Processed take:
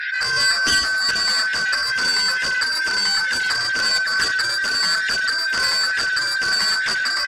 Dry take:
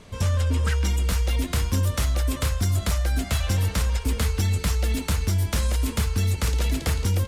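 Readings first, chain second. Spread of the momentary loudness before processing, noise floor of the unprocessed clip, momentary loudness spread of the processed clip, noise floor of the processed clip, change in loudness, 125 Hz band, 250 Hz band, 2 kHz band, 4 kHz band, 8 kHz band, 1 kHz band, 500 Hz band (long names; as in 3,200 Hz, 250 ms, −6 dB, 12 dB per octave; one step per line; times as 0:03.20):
2 LU, −35 dBFS, 3 LU, −22 dBFS, +6.5 dB, −24.0 dB, −10.0 dB, +19.5 dB, +16.0 dB, +6.0 dB, +8.0 dB, −3.5 dB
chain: band-splitting scrambler in four parts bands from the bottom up 4123
high-pass filter 770 Hz 12 dB per octave
high-shelf EQ 9,800 Hz −8 dB
in parallel at −9 dB: gain into a clipping stage and back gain 30 dB
on the sum: spectral peaks only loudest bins 64
double-tracking delay 13 ms −2.5 dB
on a send: single-tap delay 93 ms −7.5 dB
on the sum: harmonic generator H 3 −9 dB, 7 −12 dB, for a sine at −6.5 dBFS
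background raised ahead of every attack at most 30 dB per second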